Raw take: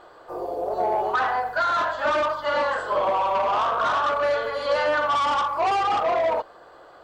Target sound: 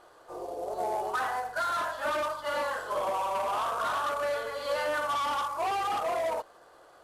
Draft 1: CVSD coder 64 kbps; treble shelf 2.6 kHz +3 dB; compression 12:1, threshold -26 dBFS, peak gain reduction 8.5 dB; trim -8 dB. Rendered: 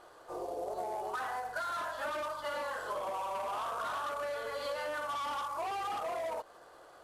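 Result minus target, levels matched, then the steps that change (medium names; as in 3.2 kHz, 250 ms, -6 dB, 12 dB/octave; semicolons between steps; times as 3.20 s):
compression: peak gain reduction +8.5 dB
remove: compression 12:1, threshold -26 dBFS, peak gain reduction 8.5 dB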